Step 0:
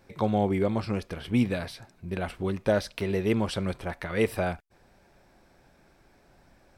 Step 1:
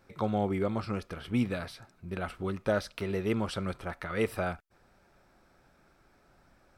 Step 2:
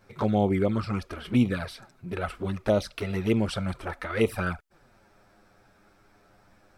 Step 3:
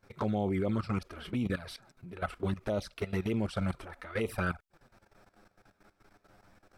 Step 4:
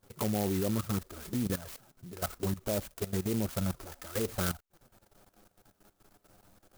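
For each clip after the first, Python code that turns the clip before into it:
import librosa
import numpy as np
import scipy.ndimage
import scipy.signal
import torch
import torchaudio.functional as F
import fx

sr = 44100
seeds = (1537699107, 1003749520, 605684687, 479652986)

y1 = fx.peak_eq(x, sr, hz=1300.0, db=9.5, octaves=0.27)
y1 = F.gain(torch.from_numpy(y1), -4.5).numpy()
y2 = fx.env_flanger(y1, sr, rest_ms=10.4, full_db=-24.5)
y2 = F.gain(torch.from_numpy(y2), 7.0).numpy()
y3 = fx.level_steps(y2, sr, step_db=15)
y4 = fx.clock_jitter(y3, sr, seeds[0], jitter_ms=0.12)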